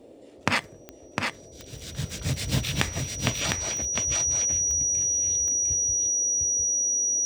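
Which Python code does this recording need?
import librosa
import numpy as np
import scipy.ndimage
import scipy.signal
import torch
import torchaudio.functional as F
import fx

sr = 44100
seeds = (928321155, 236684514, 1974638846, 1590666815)

y = fx.fix_declick_ar(x, sr, threshold=10.0)
y = fx.notch(y, sr, hz=5800.0, q=30.0)
y = fx.noise_reduce(y, sr, print_start_s=0.67, print_end_s=1.17, reduce_db=26.0)
y = fx.fix_echo_inverse(y, sr, delay_ms=705, level_db=-4.0)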